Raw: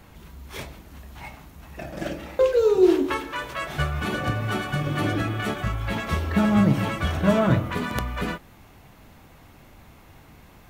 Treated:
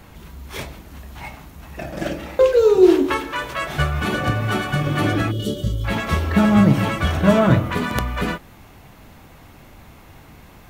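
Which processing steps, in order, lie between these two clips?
spectral gain 5.31–5.84, 610–2800 Hz -23 dB; gain +5 dB

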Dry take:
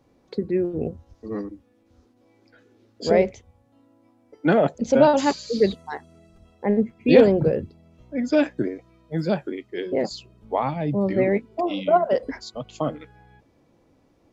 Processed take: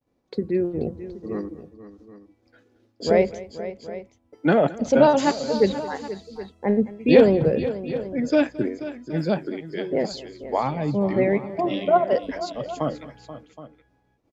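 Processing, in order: expander -52 dBFS; tapped delay 0.219/0.483/0.772 s -19/-14/-16.5 dB

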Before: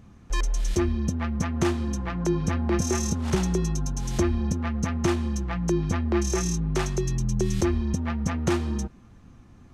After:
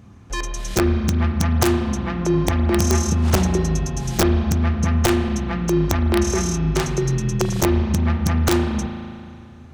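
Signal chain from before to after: HPF 56 Hz 12 dB/oct; bell 98 Hz +3.5 dB 0.38 oct; wrapped overs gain 14 dB; spring tank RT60 2.4 s, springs 37 ms, chirp 20 ms, DRR 5.5 dB; gain +4.5 dB

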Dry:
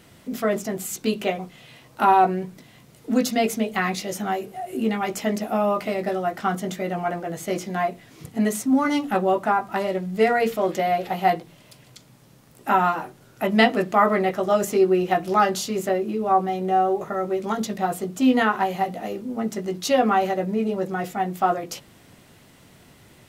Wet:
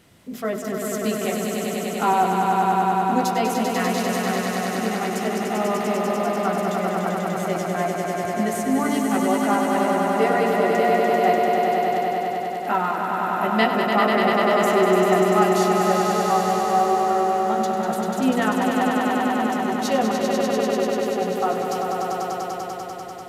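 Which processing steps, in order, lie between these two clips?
downsampling 32000 Hz; 20.11–21.22 fixed phaser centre 480 Hz, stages 4; swelling echo 98 ms, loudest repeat 5, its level -5 dB; gain -3.5 dB

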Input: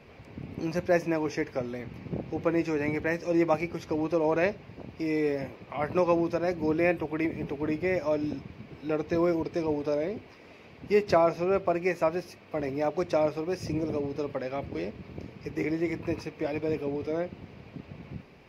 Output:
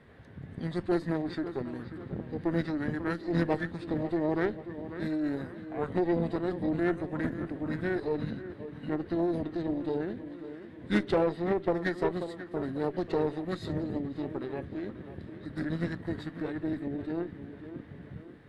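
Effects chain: tape echo 0.54 s, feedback 53%, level -10.5 dB, low-pass 3200 Hz; formant shift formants -5 st; added harmonics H 6 -21 dB, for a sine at -10.5 dBFS; gain -3.5 dB

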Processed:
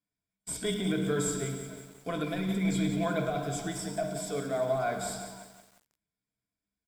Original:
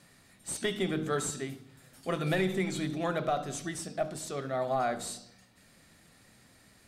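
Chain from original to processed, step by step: low shelf 240 Hz +6 dB; frequency-shifting echo 0.294 s, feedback 44%, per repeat +92 Hz, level -20.5 dB; in parallel at -4.5 dB: soft clip -19.5 dBFS, distortion -21 dB; on the sum: negative-ratio compressor -25 dBFS, ratio -1; on a send: tapped delay 49/104 ms -14.5/-12.5 dB; on the sum: flange 0.45 Hz, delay 3.7 ms, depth 2.6 ms, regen -73%; ripple EQ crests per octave 1.7, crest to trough 12 dB; gate -47 dBFS, range -34 dB; lo-fi delay 0.177 s, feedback 55%, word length 8-bit, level -9 dB; gain -2.5 dB

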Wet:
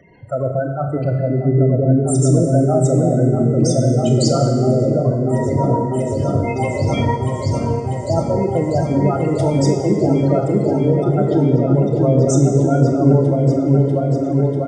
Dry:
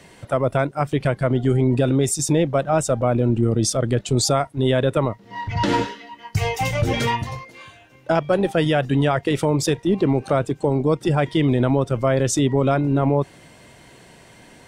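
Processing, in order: spectral gate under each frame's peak -10 dB strong; 0.92–1.74 whine 2000 Hz -48 dBFS; doubler 30 ms -11.5 dB; repeats that get brighter 0.643 s, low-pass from 400 Hz, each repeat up 1 oct, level 0 dB; on a send at -5 dB: reverb RT60 1.6 s, pre-delay 38 ms

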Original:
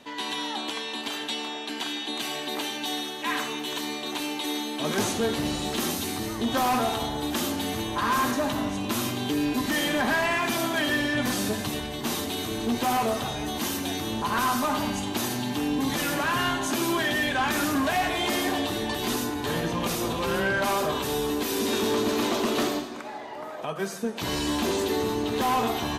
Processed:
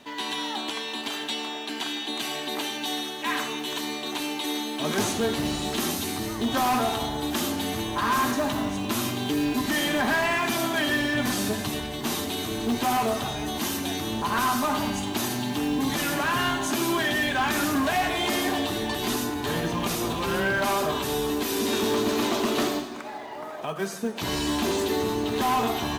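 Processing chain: notch 510 Hz, Q 12; in parallel at -5.5 dB: short-mantissa float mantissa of 2-bit; on the sum: gain -3 dB

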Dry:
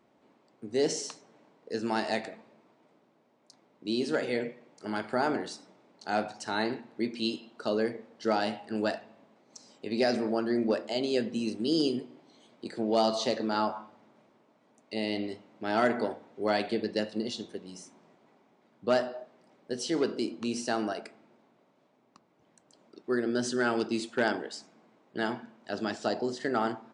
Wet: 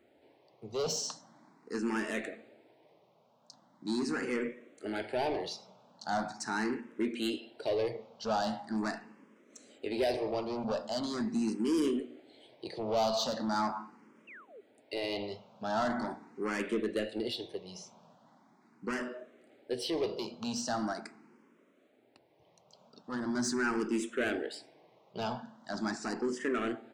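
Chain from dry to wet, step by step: soft clip -27.5 dBFS, distortion -9 dB; painted sound fall, 14.27–14.61, 370–2900 Hz -53 dBFS; endless phaser +0.41 Hz; gain +3.5 dB

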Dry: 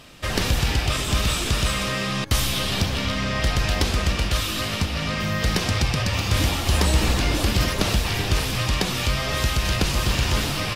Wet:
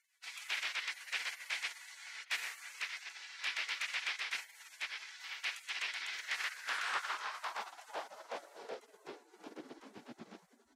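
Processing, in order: spectral gate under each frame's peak -25 dB weak; band-pass sweep 2200 Hz -> 210 Hz, 6.17–10.14; gain +2 dB

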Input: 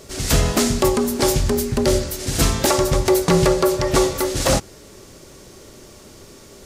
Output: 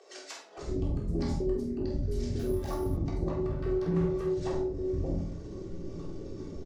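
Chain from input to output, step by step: formant sharpening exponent 2; 0.71–1.61 bell 1700 Hz -> 200 Hz -14 dB 0.74 oct; compressor 10:1, threshold -31 dBFS, peak gain reduction 19.5 dB; air absorption 99 m; 3.51–4.25 overloaded stage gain 32.5 dB; doubler 48 ms -7 dB; bands offset in time highs, lows 0.58 s, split 590 Hz; shoebox room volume 570 m³, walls furnished, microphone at 3.6 m; 2.39–2.97 careless resampling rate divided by 4×, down none, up hold; Doppler distortion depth 0.12 ms; gain -3.5 dB

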